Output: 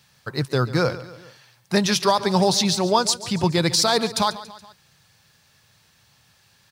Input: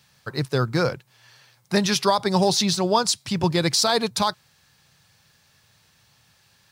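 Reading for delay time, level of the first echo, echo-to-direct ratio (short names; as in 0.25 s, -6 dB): 0.141 s, -16.0 dB, -14.5 dB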